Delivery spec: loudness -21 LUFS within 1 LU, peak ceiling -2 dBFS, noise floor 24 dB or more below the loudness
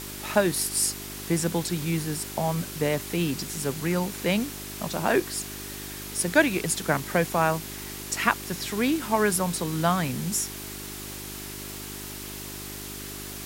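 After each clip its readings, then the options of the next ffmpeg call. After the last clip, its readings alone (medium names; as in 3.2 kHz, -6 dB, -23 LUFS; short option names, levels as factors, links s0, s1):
hum 50 Hz; highest harmonic 400 Hz; hum level -40 dBFS; noise floor -38 dBFS; noise floor target -52 dBFS; loudness -27.5 LUFS; peak level -5.0 dBFS; loudness target -21.0 LUFS
-> -af "bandreject=f=50:t=h:w=4,bandreject=f=100:t=h:w=4,bandreject=f=150:t=h:w=4,bandreject=f=200:t=h:w=4,bandreject=f=250:t=h:w=4,bandreject=f=300:t=h:w=4,bandreject=f=350:t=h:w=4,bandreject=f=400:t=h:w=4"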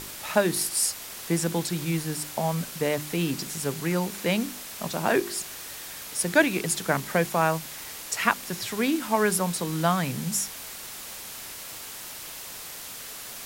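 hum not found; noise floor -40 dBFS; noise floor target -52 dBFS
-> -af "afftdn=nr=12:nf=-40"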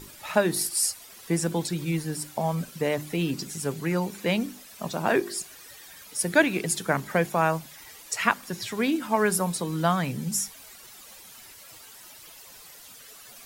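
noise floor -48 dBFS; noise floor target -51 dBFS
-> -af "afftdn=nr=6:nf=-48"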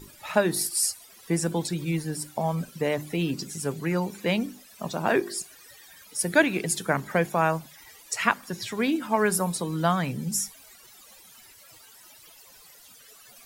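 noise floor -52 dBFS; loudness -27.0 LUFS; peak level -5.5 dBFS; loudness target -21.0 LUFS
-> -af "volume=2,alimiter=limit=0.794:level=0:latency=1"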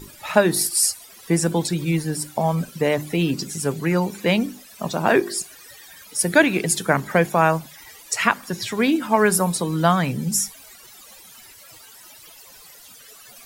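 loudness -21.0 LUFS; peak level -2.0 dBFS; noise floor -46 dBFS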